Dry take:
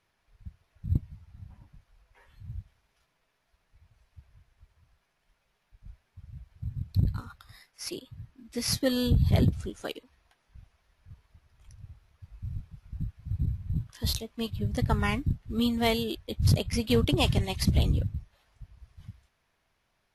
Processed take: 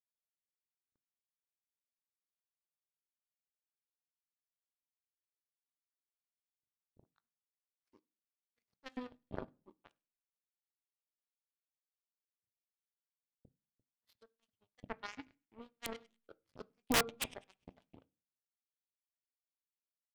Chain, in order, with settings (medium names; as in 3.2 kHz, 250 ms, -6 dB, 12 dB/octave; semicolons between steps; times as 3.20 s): flange 0.15 Hz, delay 7.1 ms, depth 6.7 ms, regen +75%; LFO band-pass saw up 2.9 Hz 260–2400 Hz; band-passed feedback delay 100 ms, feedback 67%, band-pass 2.6 kHz, level -7.5 dB; power-law waveshaper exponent 3; on a send at -15 dB: reverberation RT60 0.35 s, pre-delay 3 ms; on the sum: integer overflow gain 34 dB; trim +13.5 dB